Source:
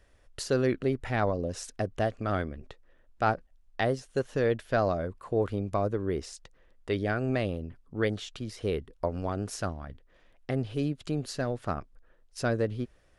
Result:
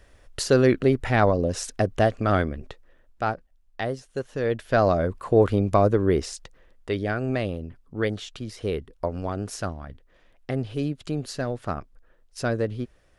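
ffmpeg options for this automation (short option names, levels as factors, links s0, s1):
-af "volume=8.41,afade=t=out:st=2.49:d=0.84:silence=0.354813,afade=t=in:st=4.37:d=0.77:silence=0.298538,afade=t=out:st=6.1:d=0.84:silence=0.446684"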